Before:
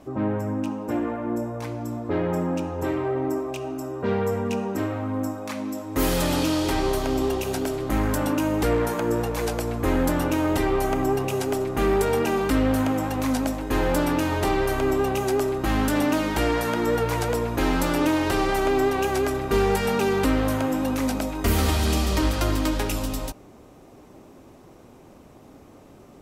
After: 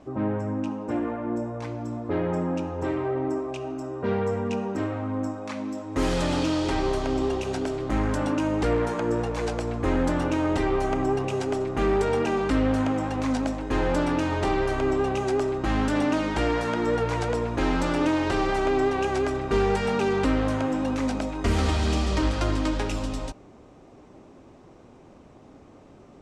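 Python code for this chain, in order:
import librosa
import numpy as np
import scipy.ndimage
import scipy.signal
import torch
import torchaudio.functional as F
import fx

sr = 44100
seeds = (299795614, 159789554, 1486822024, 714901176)

y = scipy.signal.sosfilt(scipy.signal.butter(4, 8400.0, 'lowpass', fs=sr, output='sos'), x)
y = fx.high_shelf(y, sr, hz=5100.0, db=-6.0)
y = F.gain(torch.from_numpy(y), -1.5).numpy()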